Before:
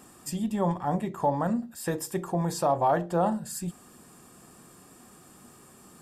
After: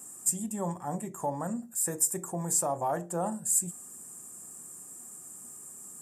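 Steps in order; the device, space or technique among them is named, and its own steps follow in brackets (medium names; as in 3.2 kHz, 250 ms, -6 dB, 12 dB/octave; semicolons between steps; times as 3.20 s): budget condenser microphone (high-pass 85 Hz; resonant high shelf 5.6 kHz +12.5 dB, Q 3); 1.79–2.27 s: band-stop 3.1 kHz, Q 6; trim -6.5 dB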